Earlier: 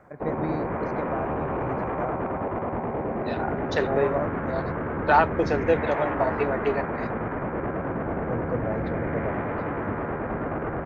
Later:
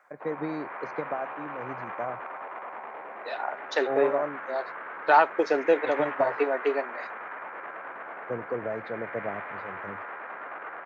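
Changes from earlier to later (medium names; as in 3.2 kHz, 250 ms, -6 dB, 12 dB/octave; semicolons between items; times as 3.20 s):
first voice: add high-pass 220 Hz; background: add high-pass 1.2 kHz 12 dB/octave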